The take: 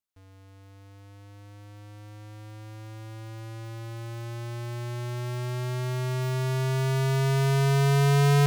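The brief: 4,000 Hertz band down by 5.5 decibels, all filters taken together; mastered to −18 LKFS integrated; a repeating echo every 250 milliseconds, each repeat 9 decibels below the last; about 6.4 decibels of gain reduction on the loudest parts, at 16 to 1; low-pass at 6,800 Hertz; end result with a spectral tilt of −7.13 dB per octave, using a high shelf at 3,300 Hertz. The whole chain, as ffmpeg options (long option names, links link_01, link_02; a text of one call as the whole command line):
ffmpeg -i in.wav -af "lowpass=6800,highshelf=frequency=3300:gain=-4,equalizer=frequency=4000:width_type=o:gain=-4,acompressor=threshold=-27dB:ratio=16,aecho=1:1:250|500|750|1000:0.355|0.124|0.0435|0.0152,volume=12.5dB" out.wav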